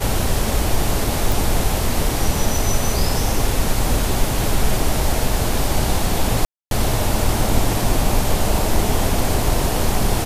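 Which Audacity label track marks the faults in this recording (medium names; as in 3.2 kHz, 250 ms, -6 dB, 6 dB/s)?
1.320000	1.320000	pop
6.450000	6.710000	dropout 262 ms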